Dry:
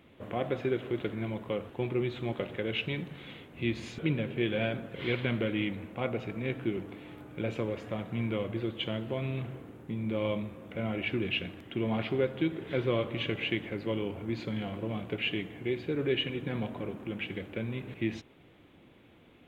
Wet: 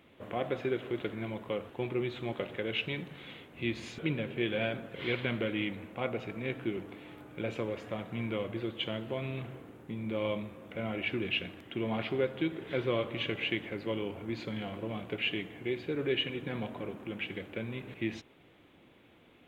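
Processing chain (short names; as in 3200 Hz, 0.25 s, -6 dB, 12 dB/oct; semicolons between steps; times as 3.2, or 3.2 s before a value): low shelf 280 Hz -5.5 dB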